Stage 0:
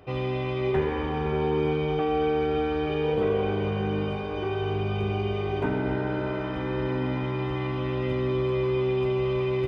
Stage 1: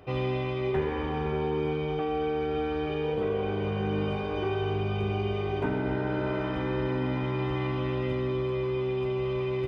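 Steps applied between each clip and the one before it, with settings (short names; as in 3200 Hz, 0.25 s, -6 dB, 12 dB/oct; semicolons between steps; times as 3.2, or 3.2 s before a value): vocal rider 0.5 s; gain -2.5 dB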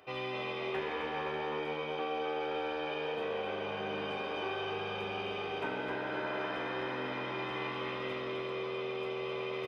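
HPF 1100 Hz 6 dB/oct; frequency-shifting echo 0.259 s, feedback 47%, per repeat +82 Hz, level -5.5 dB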